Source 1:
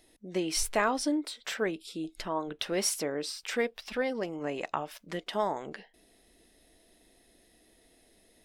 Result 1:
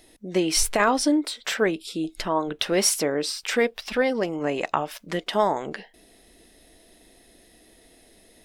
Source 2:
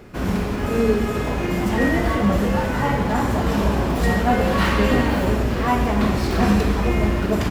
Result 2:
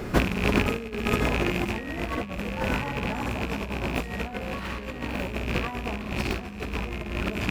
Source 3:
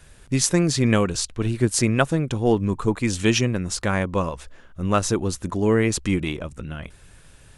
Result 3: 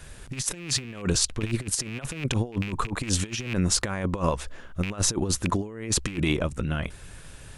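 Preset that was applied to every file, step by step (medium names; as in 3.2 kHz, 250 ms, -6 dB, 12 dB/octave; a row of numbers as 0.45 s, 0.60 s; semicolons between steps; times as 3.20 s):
rattle on loud lows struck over -23 dBFS, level -12 dBFS; compressor with a negative ratio -26 dBFS, ratio -0.5; peak normalisation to -6 dBFS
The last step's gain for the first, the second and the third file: +8.0 dB, 0.0 dB, -0.5 dB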